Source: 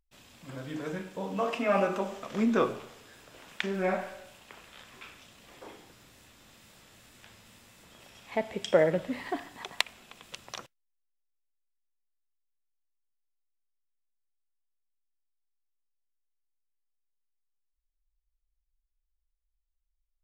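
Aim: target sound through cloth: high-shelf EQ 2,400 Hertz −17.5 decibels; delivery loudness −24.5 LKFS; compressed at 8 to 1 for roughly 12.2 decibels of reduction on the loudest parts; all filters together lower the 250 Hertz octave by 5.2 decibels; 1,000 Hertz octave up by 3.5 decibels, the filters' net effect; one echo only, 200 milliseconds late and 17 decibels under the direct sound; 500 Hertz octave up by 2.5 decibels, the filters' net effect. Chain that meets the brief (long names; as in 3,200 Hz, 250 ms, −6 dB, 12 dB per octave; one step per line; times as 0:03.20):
parametric band 250 Hz −8 dB
parametric band 500 Hz +3.5 dB
parametric band 1,000 Hz +7.5 dB
downward compressor 8 to 1, threshold −27 dBFS
high-shelf EQ 2,400 Hz −17.5 dB
single-tap delay 200 ms −17 dB
level +12.5 dB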